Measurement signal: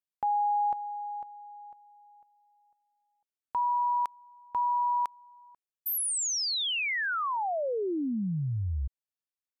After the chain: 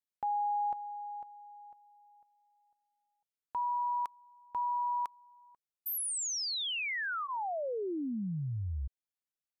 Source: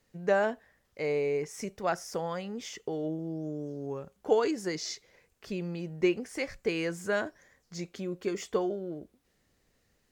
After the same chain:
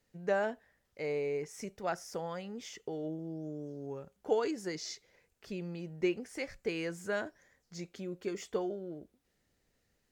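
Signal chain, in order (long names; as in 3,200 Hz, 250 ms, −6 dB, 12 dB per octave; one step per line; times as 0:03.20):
notch filter 1,100 Hz, Q 15
level −5 dB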